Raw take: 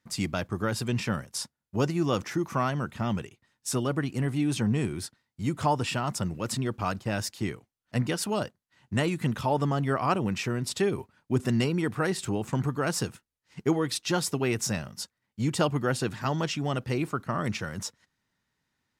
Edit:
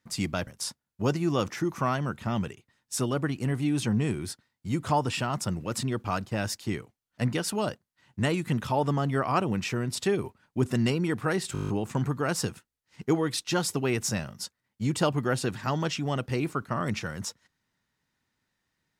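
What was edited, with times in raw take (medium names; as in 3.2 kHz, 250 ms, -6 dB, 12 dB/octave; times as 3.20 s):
0.47–1.21 s: delete
12.27 s: stutter 0.02 s, 9 plays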